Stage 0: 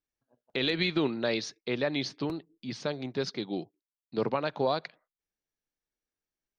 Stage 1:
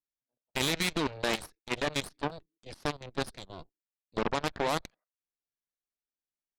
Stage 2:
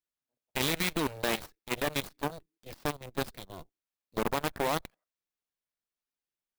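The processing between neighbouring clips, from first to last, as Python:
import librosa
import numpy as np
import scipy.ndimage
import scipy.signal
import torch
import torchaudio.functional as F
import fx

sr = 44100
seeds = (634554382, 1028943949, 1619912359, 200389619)

y1 = fx.dynamic_eq(x, sr, hz=900.0, q=2.7, threshold_db=-46.0, ratio=4.0, max_db=4)
y1 = fx.cheby_harmonics(y1, sr, harmonics=(5, 7, 8), levels_db=(-32, -14, -15), full_scale_db=-15.0)
y1 = fx.level_steps(y1, sr, step_db=15)
y1 = F.gain(torch.from_numpy(y1), 1.5).numpy()
y2 = fx.clock_jitter(y1, sr, seeds[0], jitter_ms=0.03)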